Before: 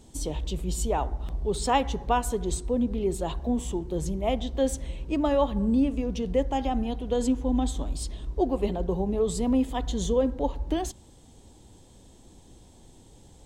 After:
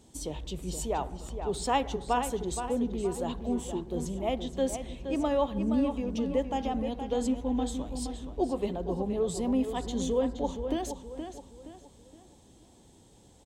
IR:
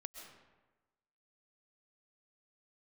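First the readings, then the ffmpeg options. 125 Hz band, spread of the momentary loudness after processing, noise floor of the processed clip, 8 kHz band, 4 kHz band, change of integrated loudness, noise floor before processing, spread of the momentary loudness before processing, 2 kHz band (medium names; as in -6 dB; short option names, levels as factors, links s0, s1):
-6.5 dB, 10 LU, -58 dBFS, -3.5 dB, -3.0 dB, -3.5 dB, -53 dBFS, 8 LU, -3.0 dB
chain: -filter_complex "[0:a]highpass=f=90:p=1,asplit=2[s0][s1];[s1]adelay=471,lowpass=f=4900:p=1,volume=0.398,asplit=2[s2][s3];[s3]adelay=471,lowpass=f=4900:p=1,volume=0.38,asplit=2[s4][s5];[s5]adelay=471,lowpass=f=4900:p=1,volume=0.38,asplit=2[s6][s7];[s7]adelay=471,lowpass=f=4900:p=1,volume=0.38[s8];[s2][s4][s6][s8]amix=inputs=4:normalize=0[s9];[s0][s9]amix=inputs=2:normalize=0,volume=0.668"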